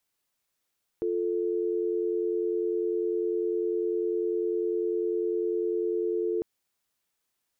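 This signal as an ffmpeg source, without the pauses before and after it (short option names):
-f lavfi -i "aevalsrc='0.0398*(sin(2*PI*350*t)+sin(2*PI*440*t))':d=5.4:s=44100"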